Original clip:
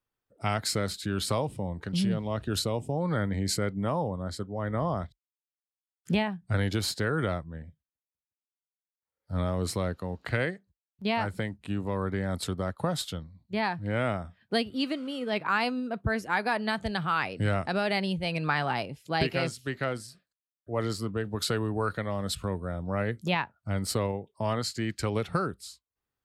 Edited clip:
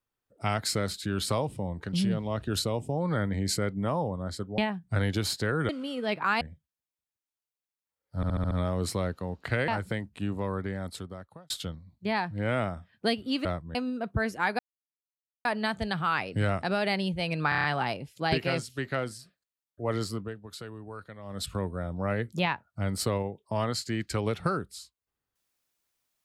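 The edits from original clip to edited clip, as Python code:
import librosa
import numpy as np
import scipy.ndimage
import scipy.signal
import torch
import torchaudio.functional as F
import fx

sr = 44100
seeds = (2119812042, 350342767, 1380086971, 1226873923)

y = fx.edit(x, sr, fx.cut(start_s=4.58, length_s=1.58),
    fx.swap(start_s=7.27, length_s=0.3, other_s=14.93, other_length_s=0.72),
    fx.stutter(start_s=9.32, slice_s=0.07, count=6),
    fx.cut(start_s=10.49, length_s=0.67),
    fx.fade_out_span(start_s=11.82, length_s=1.16),
    fx.insert_silence(at_s=16.49, length_s=0.86),
    fx.stutter(start_s=18.53, slice_s=0.03, count=6),
    fx.fade_down_up(start_s=20.99, length_s=1.42, db=-13.0, fade_s=0.29), tone=tone)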